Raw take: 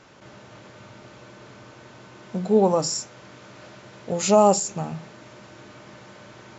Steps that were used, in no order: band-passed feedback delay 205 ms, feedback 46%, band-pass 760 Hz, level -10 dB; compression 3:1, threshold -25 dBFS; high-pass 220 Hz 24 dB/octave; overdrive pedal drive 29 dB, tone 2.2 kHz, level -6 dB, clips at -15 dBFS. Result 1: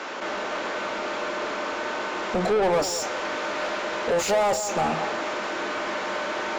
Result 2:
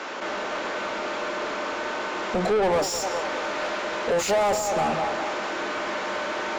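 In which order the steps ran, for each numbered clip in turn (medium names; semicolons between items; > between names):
high-pass > compression > overdrive pedal > band-passed feedback delay; high-pass > compression > band-passed feedback delay > overdrive pedal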